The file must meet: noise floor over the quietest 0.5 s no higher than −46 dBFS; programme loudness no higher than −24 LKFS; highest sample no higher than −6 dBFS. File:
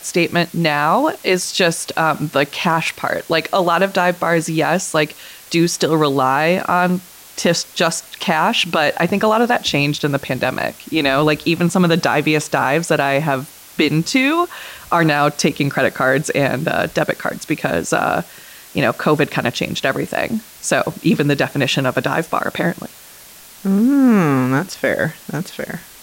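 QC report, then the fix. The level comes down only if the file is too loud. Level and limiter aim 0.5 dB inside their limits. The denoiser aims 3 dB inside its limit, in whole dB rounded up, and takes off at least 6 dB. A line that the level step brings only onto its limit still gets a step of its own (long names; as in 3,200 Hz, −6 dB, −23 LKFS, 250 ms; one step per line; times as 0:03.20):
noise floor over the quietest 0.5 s −41 dBFS: out of spec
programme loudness −17.0 LKFS: out of spec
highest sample −4.0 dBFS: out of spec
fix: level −7.5 dB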